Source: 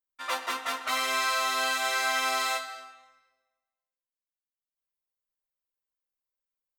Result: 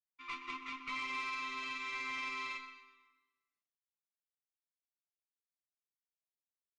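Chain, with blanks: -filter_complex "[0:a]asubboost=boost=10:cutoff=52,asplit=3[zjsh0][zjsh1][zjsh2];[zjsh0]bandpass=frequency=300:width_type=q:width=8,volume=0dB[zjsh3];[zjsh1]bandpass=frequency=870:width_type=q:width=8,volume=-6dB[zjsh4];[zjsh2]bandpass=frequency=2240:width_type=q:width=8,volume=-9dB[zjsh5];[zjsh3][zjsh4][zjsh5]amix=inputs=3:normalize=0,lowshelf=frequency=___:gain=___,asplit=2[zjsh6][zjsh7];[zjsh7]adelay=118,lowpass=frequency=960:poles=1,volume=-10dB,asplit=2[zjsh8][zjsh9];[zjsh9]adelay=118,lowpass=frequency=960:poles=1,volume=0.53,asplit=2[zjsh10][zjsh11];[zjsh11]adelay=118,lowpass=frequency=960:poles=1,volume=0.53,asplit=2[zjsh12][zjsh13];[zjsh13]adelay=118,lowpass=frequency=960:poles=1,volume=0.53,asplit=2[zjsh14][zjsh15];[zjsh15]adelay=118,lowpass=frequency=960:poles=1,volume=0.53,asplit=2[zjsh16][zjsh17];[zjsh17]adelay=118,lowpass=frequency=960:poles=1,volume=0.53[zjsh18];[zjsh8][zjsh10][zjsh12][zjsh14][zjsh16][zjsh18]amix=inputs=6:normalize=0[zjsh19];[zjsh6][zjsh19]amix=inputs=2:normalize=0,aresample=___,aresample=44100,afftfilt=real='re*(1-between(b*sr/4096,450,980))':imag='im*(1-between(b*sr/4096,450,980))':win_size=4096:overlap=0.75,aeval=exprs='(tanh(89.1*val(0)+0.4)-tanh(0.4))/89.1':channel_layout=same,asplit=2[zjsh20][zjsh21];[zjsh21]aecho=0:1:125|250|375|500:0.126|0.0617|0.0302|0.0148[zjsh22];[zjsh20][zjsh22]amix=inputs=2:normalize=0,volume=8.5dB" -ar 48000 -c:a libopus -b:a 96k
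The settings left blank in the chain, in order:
270, -11.5, 16000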